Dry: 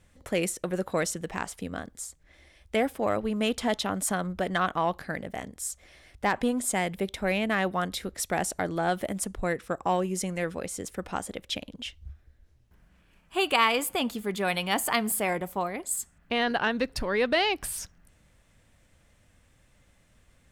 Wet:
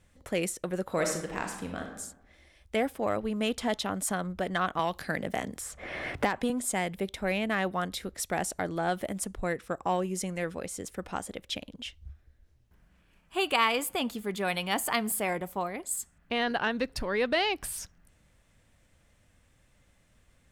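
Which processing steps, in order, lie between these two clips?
0:00.83–0:01.96: thrown reverb, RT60 0.9 s, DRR 2.5 dB
0:04.79–0:06.50: multiband upward and downward compressor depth 100%
level −2.5 dB

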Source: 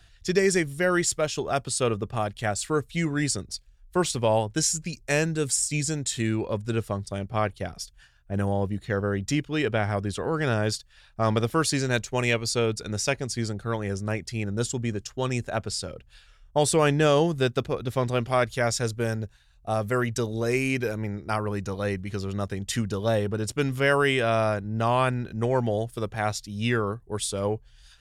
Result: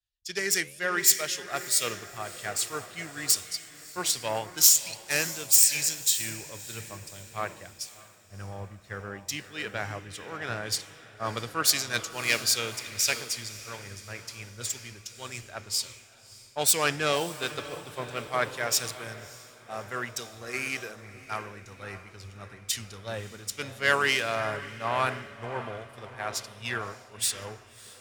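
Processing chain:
phase distortion by the signal itself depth 0.06 ms
parametric band 97 Hz +3.5 dB 0.28 octaves
on a send: feedback delay with all-pass diffusion 613 ms, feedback 64%, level −8.5 dB
on the sum: flanger 1.1 Hz, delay 8.1 ms, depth 9.3 ms, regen −90%
tilt shelving filter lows −9 dB
multiband upward and downward expander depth 100%
level −2.5 dB

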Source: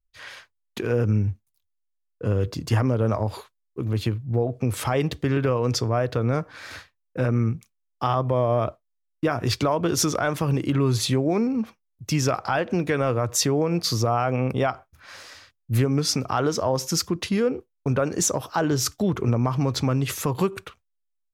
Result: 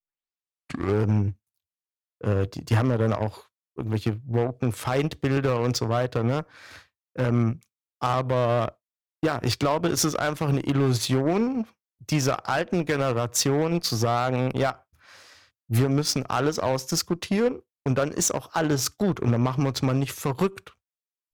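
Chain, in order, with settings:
turntable start at the beginning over 1.09 s
harmonic generator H 7 −22 dB, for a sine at −10.5 dBFS
gain into a clipping stage and back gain 14.5 dB

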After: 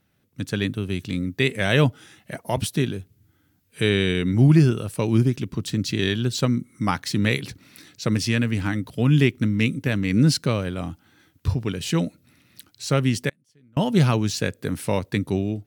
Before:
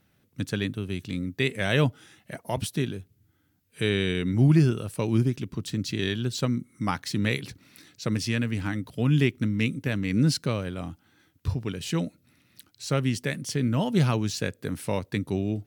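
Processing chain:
automatic gain control gain up to 7 dB
0:13.29–0:13.77: gate with flip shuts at −22 dBFS, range −35 dB
level −2 dB

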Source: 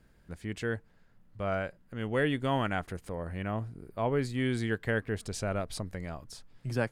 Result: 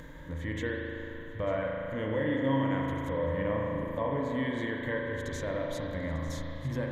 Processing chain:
EQ curve with evenly spaced ripples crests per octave 1.1, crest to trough 12 dB
downward compressor 8 to 1, threshold −43 dBFS, peak gain reduction 22 dB
bass and treble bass −3 dB, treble −7 dB
upward compression, threshold −53 dBFS
harmonic and percussive parts rebalanced harmonic +7 dB
on a send: feedback echo with a high-pass in the loop 897 ms, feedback 51%, level −15 dB
on the sum: spring reverb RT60 3.2 s, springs 37 ms, chirp 55 ms, DRR −1.5 dB
level +7 dB

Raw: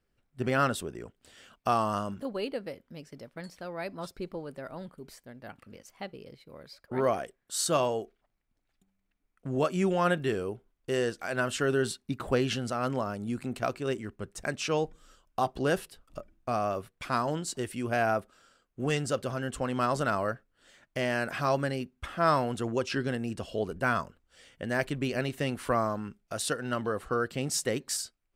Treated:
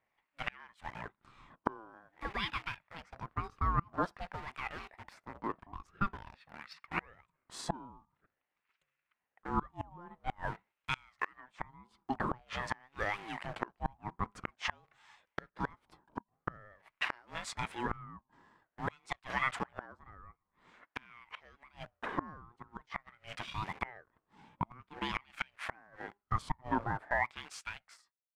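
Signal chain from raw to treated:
fade-out on the ending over 3.41 s
in parallel at −7 dB: bit reduction 7 bits
on the sum: auto-filter band-pass sine 0.48 Hz 600–2,000 Hz
gate with flip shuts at −28 dBFS, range −32 dB
ring modulator whose carrier an LFO sweeps 470 Hz, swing 30%, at 0.84 Hz
level +11.5 dB

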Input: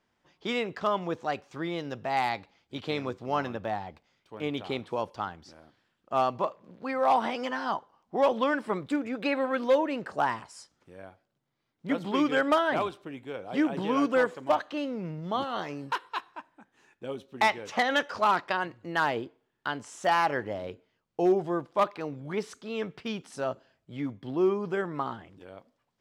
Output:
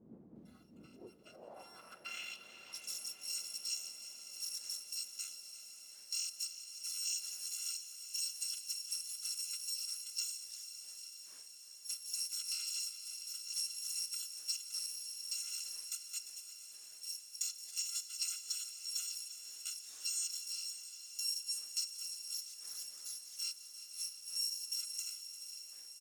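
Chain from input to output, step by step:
samples in bit-reversed order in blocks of 256 samples
wind on the microphone 480 Hz −43 dBFS
downward compressor 8 to 1, threshold −29 dBFS, peak gain reduction 11 dB
on a send: single-tap delay 172 ms −18.5 dB
on the sum: band-pass filter sweep 220 Hz → 6,500 Hz, 0:00.86–0:02.86
noise reduction from a noise print of the clip's start 8 dB
feedback delay with all-pass diffusion 558 ms, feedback 73%, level −12 dB
feedback echo at a low word length 349 ms, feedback 55%, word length 12 bits, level −13 dB

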